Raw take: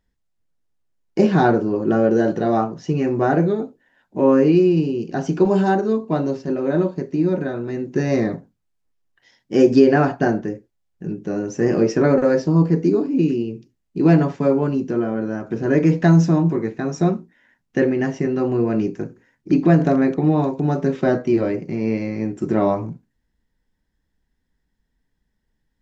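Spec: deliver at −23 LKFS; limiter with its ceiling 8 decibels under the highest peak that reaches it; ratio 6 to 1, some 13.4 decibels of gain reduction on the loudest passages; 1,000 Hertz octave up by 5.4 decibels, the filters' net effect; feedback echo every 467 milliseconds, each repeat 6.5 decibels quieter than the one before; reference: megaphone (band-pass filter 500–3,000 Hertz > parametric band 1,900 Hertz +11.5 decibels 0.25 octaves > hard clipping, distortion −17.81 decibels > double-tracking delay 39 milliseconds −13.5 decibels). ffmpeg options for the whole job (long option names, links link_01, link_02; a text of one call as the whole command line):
ffmpeg -i in.wav -filter_complex "[0:a]equalizer=frequency=1000:width_type=o:gain=8.5,acompressor=threshold=-22dB:ratio=6,alimiter=limit=-17.5dB:level=0:latency=1,highpass=500,lowpass=3000,equalizer=frequency=1900:width_type=o:width=0.25:gain=11.5,aecho=1:1:467|934|1401|1868|2335|2802:0.473|0.222|0.105|0.0491|0.0231|0.0109,asoftclip=type=hard:threshold=-25dB,asplit=2[link_01][link_02];[link_02]adelay=39,volume=-13.5dB[link_03];[link_01][link_03]amix=inputs=2:normalize=0,volume=9.5dB" out.wav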